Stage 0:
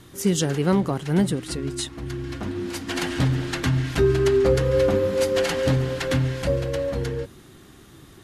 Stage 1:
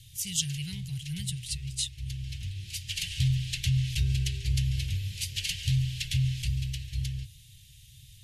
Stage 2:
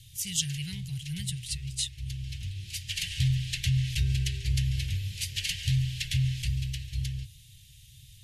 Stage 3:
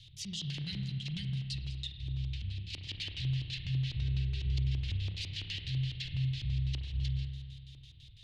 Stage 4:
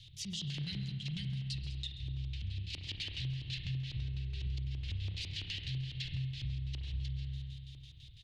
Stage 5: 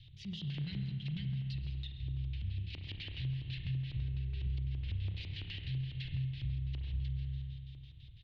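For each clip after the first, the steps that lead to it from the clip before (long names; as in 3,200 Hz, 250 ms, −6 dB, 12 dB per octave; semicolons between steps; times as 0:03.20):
elliptic band-stop filter 120–2,700 Hz, stop band 40 dB
dynamic equaliser 1,800 Hz, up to +5 dB, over −53 dBFS, Q 2.5
auto-filter low-pass square 6 Hz 300–4,100 Hz; brickwall limiter −24.5 dBFS, peak gain reduction 14.5 dB; spring reverb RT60 1.8 s, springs 30 ms, chirp 25 ms, DRR 5 dB; level −4.5 dB
downward compressor, threshold −35 dBFS, peak gain reduction 7.5 dB; slap from a distant wall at 23 metres, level −14 dB
high-frequency loss of the air 330 metres; level +1.5 dB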